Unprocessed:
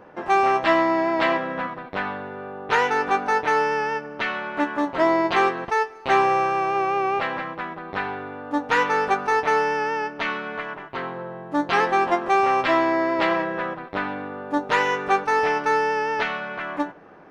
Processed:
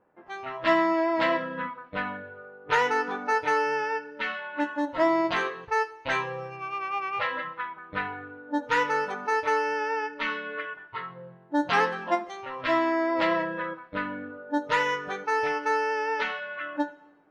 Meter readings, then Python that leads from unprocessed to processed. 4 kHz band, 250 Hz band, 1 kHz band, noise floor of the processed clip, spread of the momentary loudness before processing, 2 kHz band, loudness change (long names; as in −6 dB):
−3.5 dB, −4.0 dB, −6.5 dB, −53 dBFS, 11 LU, −4.0 dB, −5.0 dB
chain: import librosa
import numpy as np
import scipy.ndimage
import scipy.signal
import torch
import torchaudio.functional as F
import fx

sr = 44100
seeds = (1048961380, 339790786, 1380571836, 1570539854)

p1 = fx.noise_reduce_blind(x, sr, reduce_db=18)
p2 = fx.env_lowpass(p1, sr, base_hz=2300.0, full_db=-18.0)
p3 = fx.rider(p2, sr, range_db=4, speed_s=2.0)
p4 = p3 + fx.echo_single(p3, sr, ms=74, db=-23.0, dry=0)
p5 = fx.rev_double_slope(p4, sr, seeds[0], early_s=0.96, late_s=3.0, knee_db=-23, drr_db=15.5)
y = F.gain(torch.from_numpy(p5), -4.0).numpy()